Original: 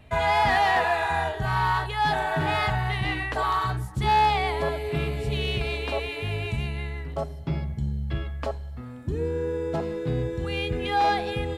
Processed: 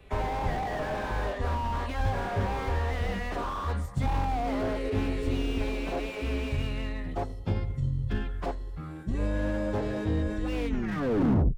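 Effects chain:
turntable brake at the end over 1.01 s
phase-vocoder pitch shift with formants kept −8 semitones
slew-rate limiting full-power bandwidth 24 Hz

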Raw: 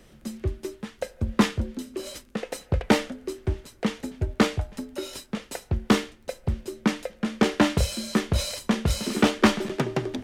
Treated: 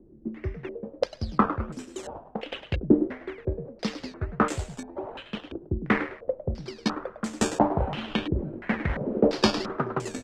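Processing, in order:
sample-and-hold swept by an LFO 15×, swing 100% 1.5 Hz
echo with shifted repeats 104 ms, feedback 31%, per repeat +85 Hz, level −11 dB
low-pass on a step sequencer 2.9 Hz 340–7,500 Hz
level −4.5 dB

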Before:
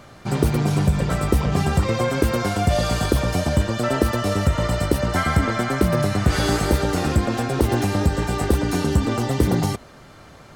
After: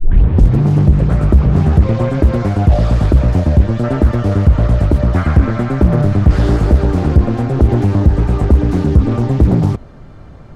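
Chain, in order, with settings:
turntable start at the beginning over 0.61 s
spectral tilt −3.5 dB per octave
in parallel at −9.5 dB: sine wavefolder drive 6 dB, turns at 4.5 dBFS
on the sum: highs frequency-modulated by the lows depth 0.54 ms
level −6 dB

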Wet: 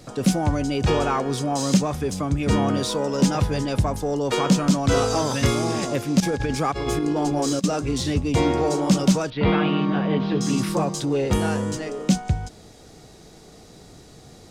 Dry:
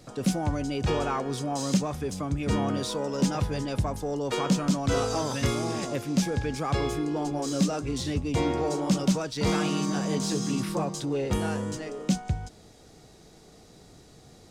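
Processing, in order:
0:06.20–0:07.64: compressor whose output falls as the input rises −29 dBFS, ratio −0.5
0:09.30–0:10.41: Butterworth low-pass 3,400 Hz 36 dB per octave
level +6 dB

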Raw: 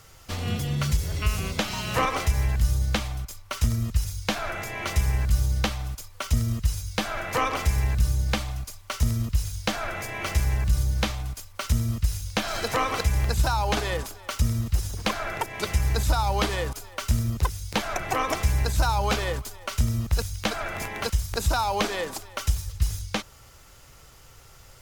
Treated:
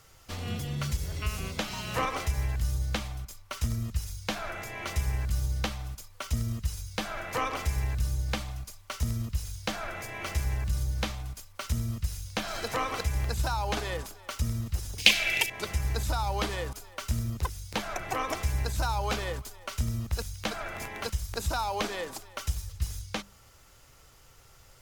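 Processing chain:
0:14.98–0:15.50: high shelf with overshoot 1,800 Hz +12.5 dB, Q 3
mains-hum notches 50/100/150/200 Hz
level −5.5 dB

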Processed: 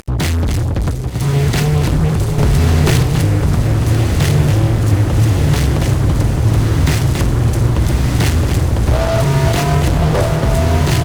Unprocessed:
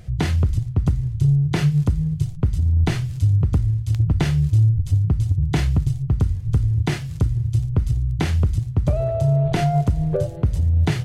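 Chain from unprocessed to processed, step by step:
high-shelf EQ 6,000 Hz +8 dB
on a send: repeating echo 278 ms, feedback 24%, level −9 dB
on the sum: upward compression, threshold −37 dBFS
0:00.90–0:01.34: low-shelf EQ 210 Hz −11.5 dB
fuzz pedal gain 29 dB, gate −35 dBFS
feedback delay with all-pass diffusion 1,194 ms, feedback 53%, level −3 dB
0:02.38–0:03.03: envelope flattener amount 100%

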